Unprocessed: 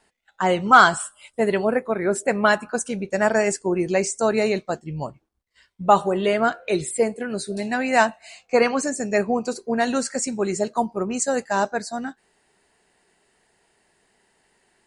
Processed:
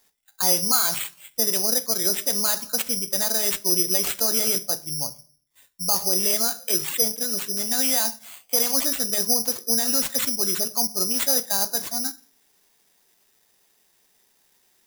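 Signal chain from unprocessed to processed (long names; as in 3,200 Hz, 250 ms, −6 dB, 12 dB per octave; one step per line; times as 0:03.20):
brickwall limiter −14 dBFS, peak gain reduction 11.5 dB
convolution reverb RT60 0.45 s, pre-delay 4 ms, DRR 10.5 dB
bad sample-rate conversion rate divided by 8×, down none, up zero stuff
level −8 dB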